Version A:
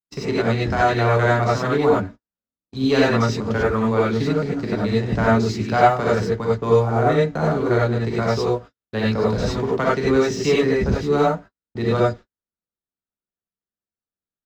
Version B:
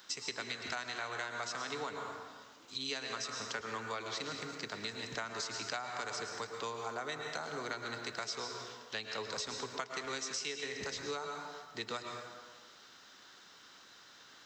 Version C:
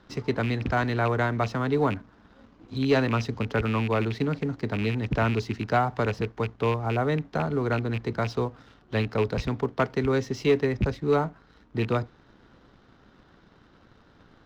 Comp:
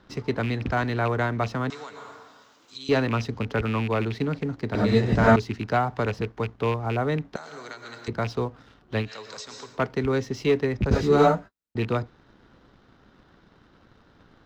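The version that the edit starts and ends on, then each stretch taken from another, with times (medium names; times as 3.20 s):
C
1.70–2.89 s: from B
4.75–5.36 s: from A
7.36–8.08 s: from B
9.06–9.75 s: from B, crossfade 0.16 s
10.91–11.76 s: from A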